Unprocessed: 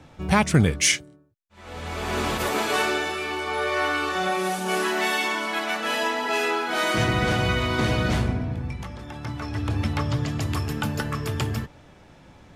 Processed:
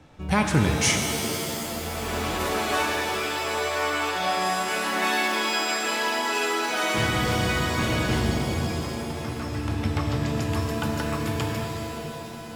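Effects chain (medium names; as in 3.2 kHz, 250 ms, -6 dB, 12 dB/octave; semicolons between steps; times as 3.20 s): pitch-shifted reverb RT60 3 s, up +7 st, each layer -2 dB, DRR 3.5 dB; trim -3.5 dB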